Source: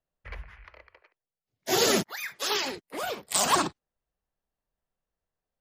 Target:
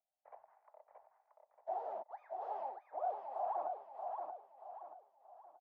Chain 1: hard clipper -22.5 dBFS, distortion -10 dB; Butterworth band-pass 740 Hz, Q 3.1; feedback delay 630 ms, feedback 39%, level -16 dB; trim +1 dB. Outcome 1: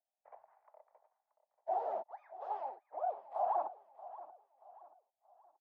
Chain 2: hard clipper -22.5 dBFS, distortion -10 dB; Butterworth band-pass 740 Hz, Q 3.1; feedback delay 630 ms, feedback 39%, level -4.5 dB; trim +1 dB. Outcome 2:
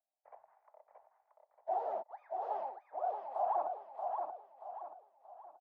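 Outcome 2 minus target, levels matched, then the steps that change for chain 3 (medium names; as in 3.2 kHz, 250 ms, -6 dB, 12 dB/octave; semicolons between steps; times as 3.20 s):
hard clipper: distortion -5 dB
change: hard clipper -29.5 dBFS, distortion -5 dB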